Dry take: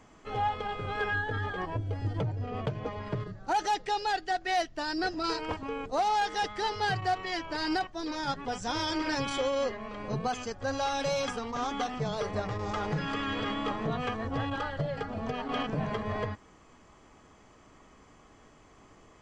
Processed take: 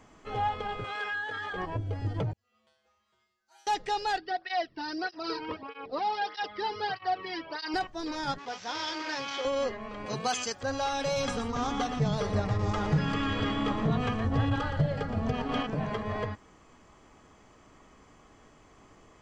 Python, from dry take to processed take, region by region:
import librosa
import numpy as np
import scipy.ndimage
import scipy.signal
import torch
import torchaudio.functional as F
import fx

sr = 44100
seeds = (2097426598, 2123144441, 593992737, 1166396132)

y = fx.chain(x, sr, fx.highpass(hz=1500.0, slope=6),
    fx.env_flatten(amount_pct=50), at=(0.84, 1.53))
y = fx.chain(y, sr, fx.pre_emphasis(coefficient=0.97),
    fx.comb_fb(f0_hz=73.0, decay_s=0.63, harmonics='odd', damping=0.0, mix_pct=100), at=(2.33, 3.67))
y = fx.chain(y, sr, fx.resample_bad(factor=4, down='none', up='filtered'),
    fx.flanger_cancel(hz=1.6, depth_ms=1.8), at=(4.18, 7.74))
y = fx.chain(y, sr, fx.cvsd(bps=32000),
    fx.highpass(hz=730.0, slope=6), at=(8.38, 9.45))
y = fx.chain(y, sr, fx.highpass(hz=210.0, slope=6),
    fx.high_shelf(hz=2200.0, db=12.0), at=(10.06, 10.63))
y = fx.chain(y, sr, fx.bass_treble(bass_db=8, treble_db=2),
    fx.echo_single(ms=118, db=-9.0), at=(11.16, 15.6))